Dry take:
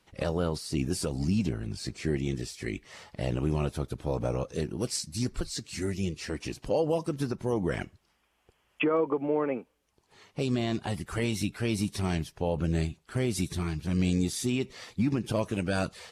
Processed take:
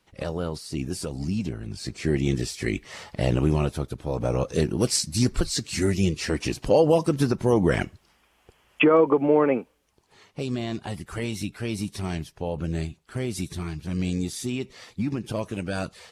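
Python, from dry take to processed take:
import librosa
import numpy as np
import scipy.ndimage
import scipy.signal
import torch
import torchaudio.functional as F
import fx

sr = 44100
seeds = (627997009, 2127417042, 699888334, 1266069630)

y = fx.gain(x, sr, db=fx.line((1.59, -0.5), (2.31, 7.5), (3.38, 7.5), (4.05, 1.0), (4.52, 8.5), (9.55, 8.5), (10.42, -0.5)))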